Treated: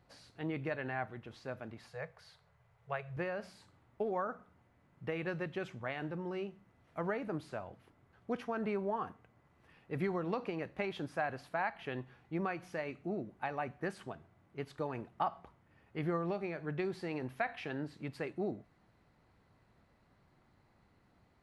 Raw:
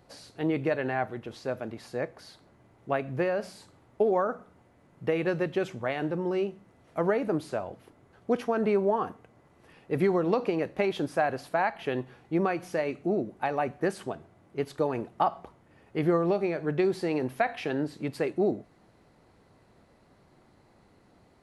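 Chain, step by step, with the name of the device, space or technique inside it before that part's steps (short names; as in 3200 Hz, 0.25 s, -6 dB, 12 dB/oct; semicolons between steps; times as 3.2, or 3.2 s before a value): 1.89–3.17 elliptic band-stop 170–430 Hz; passive tone stack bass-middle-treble 5-5-5; through cloth (high shelf 3100 Hz -18 dB); gain +9 dB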